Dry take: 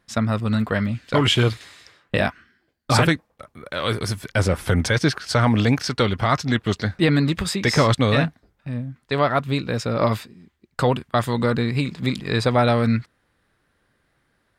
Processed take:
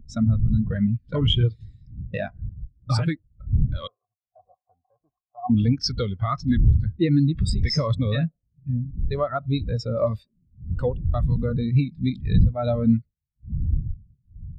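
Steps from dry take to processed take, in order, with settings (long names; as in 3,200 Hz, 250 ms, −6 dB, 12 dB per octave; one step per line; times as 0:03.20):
wind on the microphone 130 Hz −22 dBFS
0:03.87–0:05.50: formant resonators in series a
downward compressor 4 to 1, threshold −20 dBFS, peak gain reduction 15 dB
tube saturation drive 17 dB, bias 0.3
high-shelf EQ 2,500 Hz +12 dB
delay with a band-pass on its return 77 ms, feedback 50%, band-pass 570 Hz, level −18 dB
every bin expanded away from the loudest bin 2.5 to 1
level +2.5 dB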